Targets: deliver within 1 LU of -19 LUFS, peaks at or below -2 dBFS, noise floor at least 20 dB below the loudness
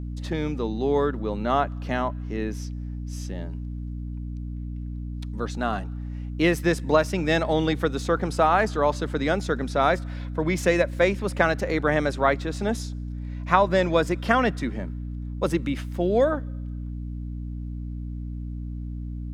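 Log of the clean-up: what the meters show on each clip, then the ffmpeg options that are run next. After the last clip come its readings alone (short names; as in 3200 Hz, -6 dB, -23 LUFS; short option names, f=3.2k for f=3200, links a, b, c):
hum 60 Hz; harmonics up to 300 Hz; hum level -30 dBFS; loudness -26.0 LUFS; peak -3.5 dBFS; loudness target -19.0 LUFS
-> -af "bandreject=f=60:t=h:w=6,bandreject=f=120:t=h:w=6,bandreject=f=180:t=h:w=6,bandreject=f=240:t=h:w=6,bandreject=f=300:t=h:w=6"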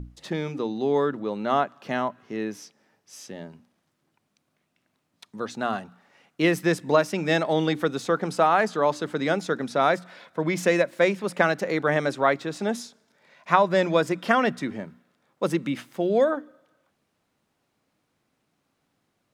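hum none; loudness -25.0 LUFS; peak -3.5 dBFS; loudness target -19.0 LUFS
-> -af "volume=6dB,alimiter=limit=-2dB:level=0:latency=1"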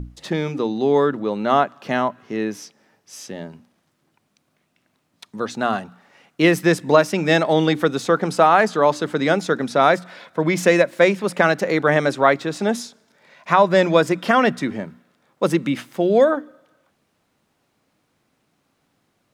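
loudness -19.0 LUFS; peak -2.0 dBFS; noise floor -69 dBFS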